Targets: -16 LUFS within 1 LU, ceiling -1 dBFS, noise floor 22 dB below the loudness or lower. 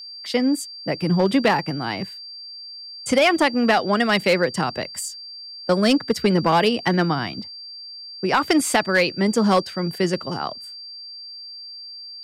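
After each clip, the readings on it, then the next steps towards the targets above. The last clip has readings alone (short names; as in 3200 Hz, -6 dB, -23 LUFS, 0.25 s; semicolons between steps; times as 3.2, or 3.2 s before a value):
clipped 0.8%; flat tops at -10.0 dBFS; steady tone 4700 Hz; tone level -35 dBFS; loudness -21.0 LUFS; peak -10.0 dBFS; loudness target -16.0 LUFS
-> clip repair -10 dBFS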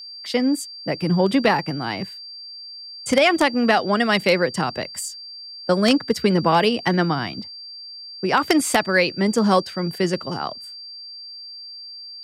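clipped 0.0%; steady tone 4700 Hz; tone level -35 dBFS
-> notch 4700 Hz, Q 30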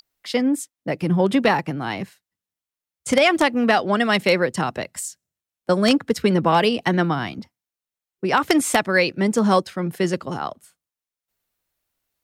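steady tone none; loudness -20.5 LUFS; peak -1.0 dBFS; loudness target -16.0 LUFS
-> gain +4.5 dB; limiter -1 dBFS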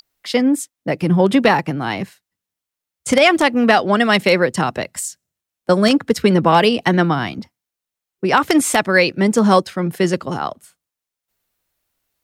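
loudness -16.0 LUFS; peak -1.0 dBFS; noise floor -85 dBFS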